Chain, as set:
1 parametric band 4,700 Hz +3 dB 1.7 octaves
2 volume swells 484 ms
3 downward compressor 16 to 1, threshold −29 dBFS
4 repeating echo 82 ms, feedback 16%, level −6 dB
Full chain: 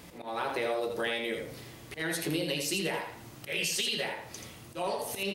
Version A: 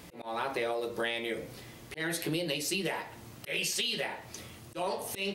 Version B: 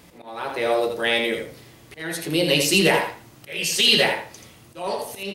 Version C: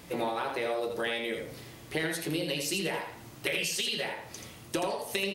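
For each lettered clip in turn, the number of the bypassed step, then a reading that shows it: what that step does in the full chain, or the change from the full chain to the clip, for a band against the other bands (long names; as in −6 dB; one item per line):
4, change in crest factor +2.0 dB
3, average gain reduction 5.5 dB
2, change in crest factor +3.5 dB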